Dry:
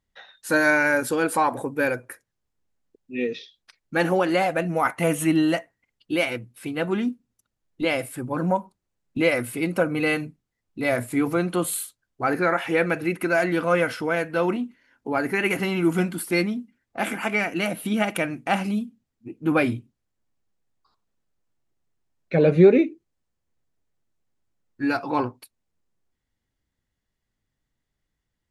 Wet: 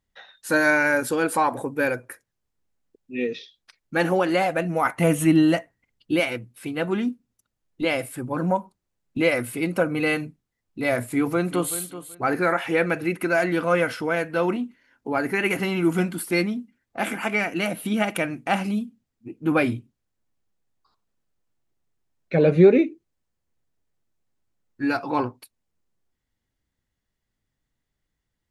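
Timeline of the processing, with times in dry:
4.94–6.2 low shelf 290 Hz +6.5 dB
11.06–11.76 echo throw 0.38 s, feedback 20%, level -13.5 dB

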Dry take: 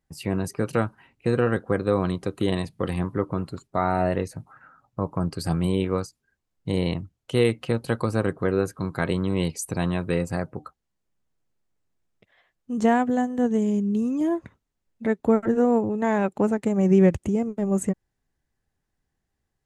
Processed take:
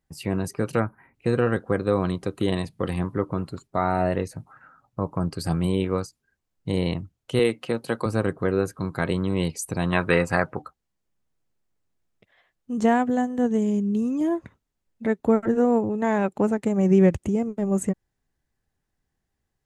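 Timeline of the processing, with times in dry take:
0.8–1.14 spectral gain 2500–9400 Hz -20 dB
7.39–8.06 HPF 190 Hz
9.92–10.62 bell 1500 Hz +13 dB 2.6 oct

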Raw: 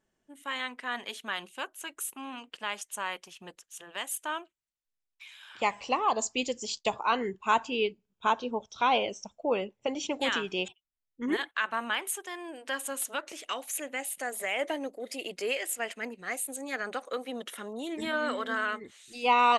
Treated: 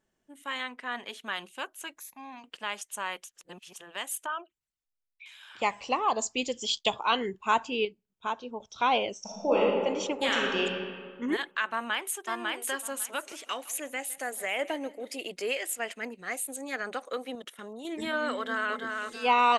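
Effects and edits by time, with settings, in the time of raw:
0.63–1.24 high shelf 3800 Hz -5.5 dB
1.98–2.44 fixed phaser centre 2000 Hz, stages 8
3.24–3.76 reverse
4.26–5.26 formant sharpening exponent 2
6.53–7.26 bell 3300 Hz +14.5 dB 0.33 oct
7.85–8.6 gain -6 dB
9.2–9.61 reverb throw, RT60 1.8 s, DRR -5.5 dB
10.19–10.64 reverb throw, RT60 1.8 s, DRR -1 dB
11.72–12.24 echo throw 0.55 s, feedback 15%, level -2 dB
12.92–15.22 feedback echo 0.16 s, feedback 38%, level -20 dB
17.35–17.85 level quantiser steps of 14 dB
18.36–18.83 echo throw 0.33 s, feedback 35%, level -4 dB

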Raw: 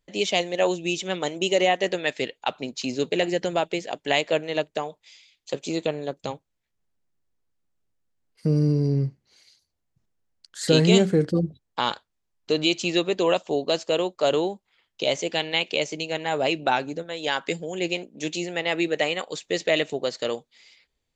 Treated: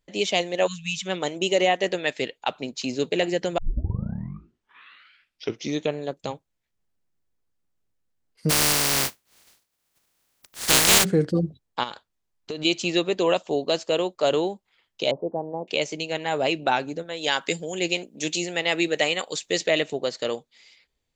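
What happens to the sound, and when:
0.67–1.06 spectral delete 220–1000 Hz
3.58 tape start 2.39 s
8.49–11.03 spectral contrast lowered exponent 0.14
11.83–12.65 compressor, threshold -28 dBFS
15.11–15.68 steep low-pass 990 Hz 48 dB/oct
17.21–19.68 high shelf 3600 Hz +8.5 dB

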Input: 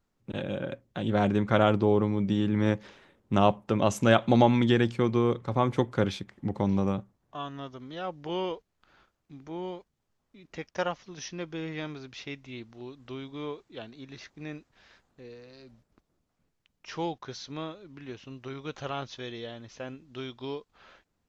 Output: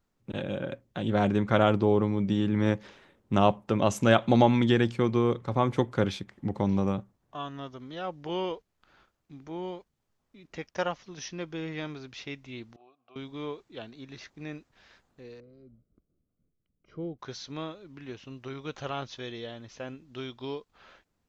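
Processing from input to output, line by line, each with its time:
12.76–13.16 vowel filter a
15.4–17.19 running mean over 50 samples

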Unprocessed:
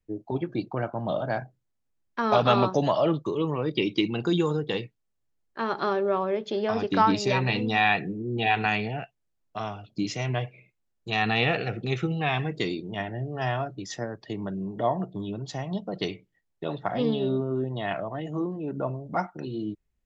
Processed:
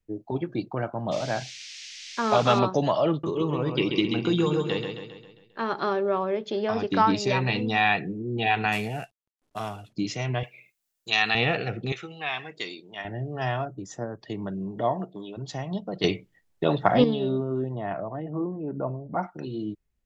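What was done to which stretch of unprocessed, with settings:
1.11–2.58 band noise 2000–6300 Hz -42 dBFS
3.1–5.73 feedback echo 0.134 s, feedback 51%, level -5.5 dB
8.72–9.93 CVSD 64 kbps
10.43–11.35 tilt +4 dB/oct
11.92–13.05 HPF 1200 Hz 6 dB/oct
13.65–14.19 band shelf 3100 Hz -14 dB
14.94–15.36 HPF 150 Hz -> 450 Hz
16.04–17.04 gain +8.5 dB
17.75–19.23 LPF 1300 Hz

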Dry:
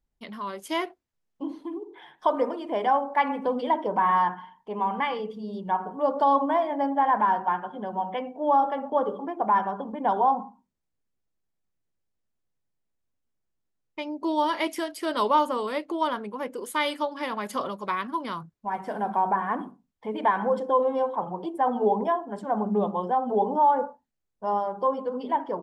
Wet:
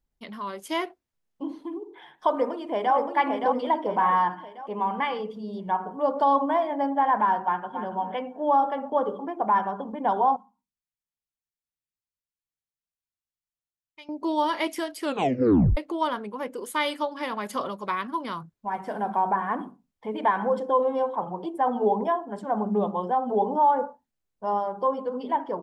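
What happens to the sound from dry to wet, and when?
2.32–2.95 echo throw 0.57 s, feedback 45%, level -4 dB
7.43–7.87 echo throw 0.28 s, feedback 20%, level -9 dB
10.36–14.09 passive tone stack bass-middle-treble 5-5-5
15.02 tape stop 0.75 s

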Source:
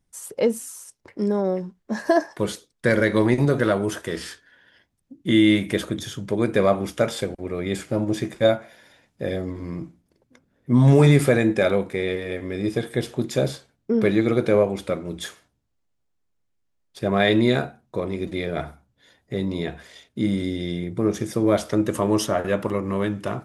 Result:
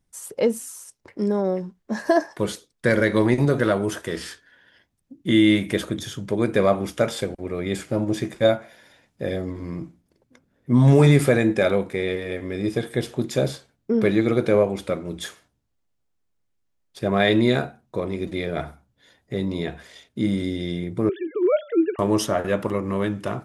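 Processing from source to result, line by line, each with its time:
21.09–21.99 sine-wave speech

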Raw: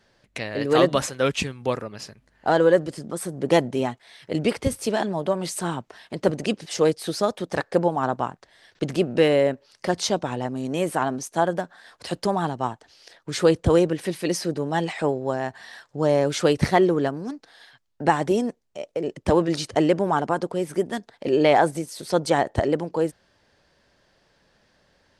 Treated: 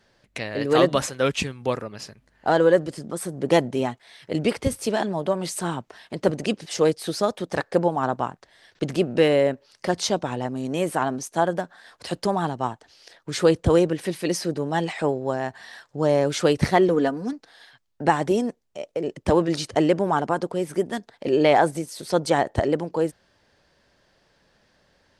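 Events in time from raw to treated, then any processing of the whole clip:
16.88–17.33 comb 4.1 ms

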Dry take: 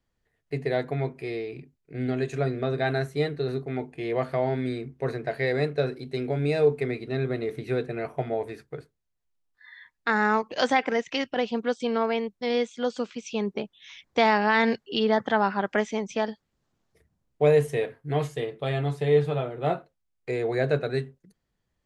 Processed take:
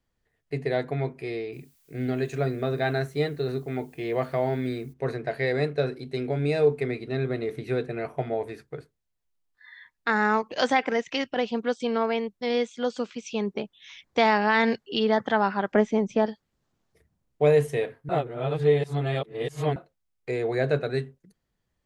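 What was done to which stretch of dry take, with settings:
1.52–4.92 added noise blue -65 dBFS
15.72–16.26 tilt shelf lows +7 dB, about 1100 Hz
18.09–19.76 reverse

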